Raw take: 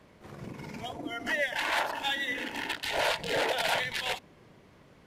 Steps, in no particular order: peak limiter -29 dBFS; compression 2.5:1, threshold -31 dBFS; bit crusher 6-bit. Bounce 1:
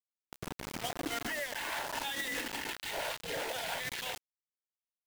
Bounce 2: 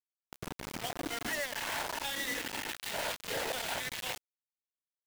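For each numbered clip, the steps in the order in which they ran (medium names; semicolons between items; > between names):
compression > bit crusher > peak limiter; compression > peak limiter > bit crusher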